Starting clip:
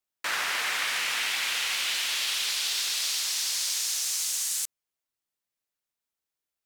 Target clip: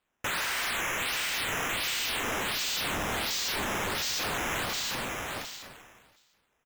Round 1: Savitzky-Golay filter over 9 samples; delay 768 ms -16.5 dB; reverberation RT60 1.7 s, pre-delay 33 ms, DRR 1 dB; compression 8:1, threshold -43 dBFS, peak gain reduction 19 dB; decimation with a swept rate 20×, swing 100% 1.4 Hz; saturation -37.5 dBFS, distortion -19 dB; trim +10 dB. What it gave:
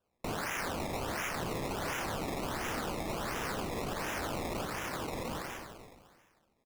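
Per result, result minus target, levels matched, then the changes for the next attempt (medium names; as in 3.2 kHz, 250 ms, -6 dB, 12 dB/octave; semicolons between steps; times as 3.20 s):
decimation with a swept rate: distortion +19 dB; compression: peak gain reduction +8.5 dB
change: decimation with a swept rate 7×, swing 100% 1.4 Hz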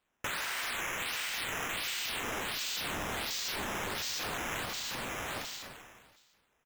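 compression: peak gain reduction +8.5 dB
change: compression 8:1, threshold -33.5 dBFS, peak gain reduction 10.5 dB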